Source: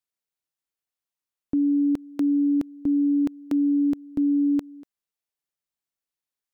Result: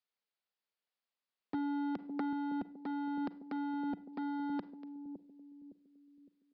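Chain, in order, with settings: elliptic high-pass 190 Hz, stop band 50 dB; bell 310 Hz -12.5 dB 0.3 oct; hard clip -35 dBFS, distortion -10 dB; 4.13–4.53 companded quantiser 8-bit; on a send: analogue delay 0.56 s, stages 2048, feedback 40%, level -8.5 dB; on the sum: Schroeder reverb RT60 0.43 s, combs from 33 ms, DRR 16 dB; downsampling 11025 Hz; 1.54–2.33 three-band squash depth 100%; gain +1 dB

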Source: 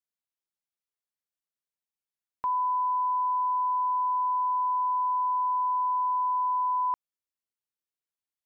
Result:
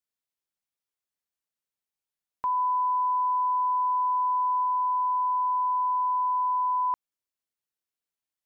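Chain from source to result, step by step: 2.57–4.64 dynamic EQ 690 Hz, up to +7 dB, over -52 dBFS, Q 5.1; gain +1 dB

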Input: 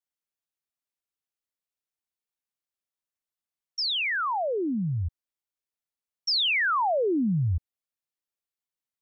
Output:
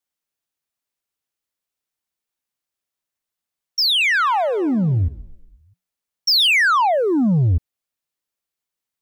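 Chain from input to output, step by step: dynamic EQ 450 Hz, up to -5 dB, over -40 dBFS, Q 1.2; sample leveller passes 1; 3.88–6.47 frequency-shifting echo 0.129 s, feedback 59%, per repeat -37 Hz, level -18 dB; gain +8.5 dB

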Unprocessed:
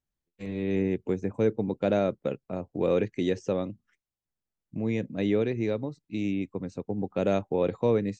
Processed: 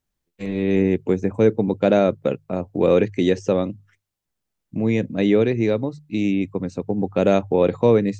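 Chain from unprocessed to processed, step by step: notches 50/100/150 Hz; gain +8.5 dB

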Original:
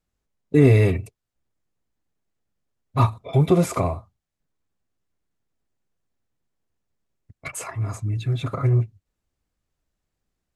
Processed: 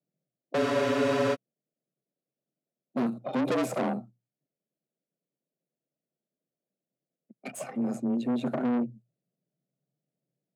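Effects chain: gate -44 dBFS, range -7 dB; resonant low shelf 670 Hz +9 dB, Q 3; tube stage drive 19 dB, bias 0.65; frequency shift +120 Hz; spectral freeze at 0.61, 0.73 s; gain -6 dB

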